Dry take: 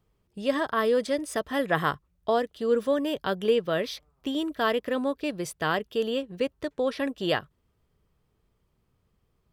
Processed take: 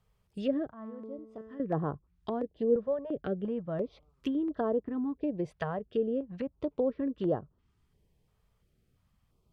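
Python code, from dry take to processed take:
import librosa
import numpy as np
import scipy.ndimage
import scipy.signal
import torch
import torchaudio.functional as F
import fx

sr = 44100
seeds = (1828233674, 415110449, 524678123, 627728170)

y = fx.env_lowpass_down(x, sr, base_hz=560.0, full_db=-25.5)
y = fx.comb_fb(y, sr, f0_hz=220.0, decay_s=1.3, harmonics='all', damping=0.0, mix_pct=80, at=(0.72, 1.6))
y = fx.filter_held_notch(y, sr, hz=2.9, low_hz=310.0, high_hz=2300.0)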